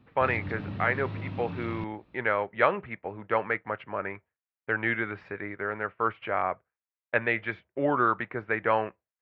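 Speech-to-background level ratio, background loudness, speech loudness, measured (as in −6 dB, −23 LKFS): 8.5 dB, −38.0 LKFS, −29.5 LKFS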